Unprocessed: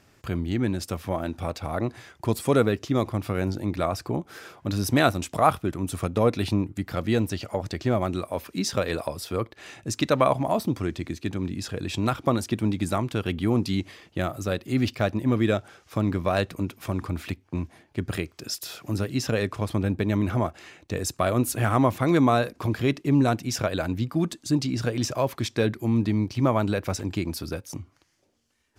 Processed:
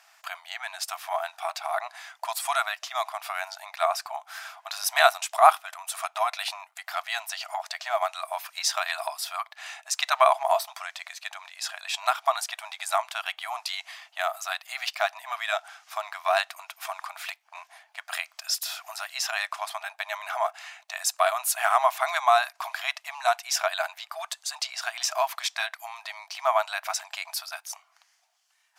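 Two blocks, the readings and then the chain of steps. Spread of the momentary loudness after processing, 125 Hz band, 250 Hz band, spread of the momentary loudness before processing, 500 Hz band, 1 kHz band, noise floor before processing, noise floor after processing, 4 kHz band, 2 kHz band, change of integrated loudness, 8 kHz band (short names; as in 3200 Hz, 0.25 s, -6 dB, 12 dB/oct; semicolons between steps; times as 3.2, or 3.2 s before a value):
15 LU, under -40 dB, under -40 dB, 10 LU, -4.0 dB, +4.5 dB, -62 dBFS, -66 dBFS, +4.5 dB, +4.5 dB, -1.5 dB, +4.5 dB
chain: brick-wall FIR high-pass 630 Hz; gain +4.5 dB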